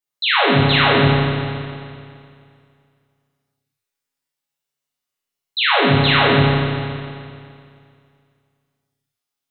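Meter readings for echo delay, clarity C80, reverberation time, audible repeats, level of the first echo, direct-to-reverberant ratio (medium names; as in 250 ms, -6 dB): no echo, -1.0 dB, 2.3 s, no echo, no echo, -8.5 dB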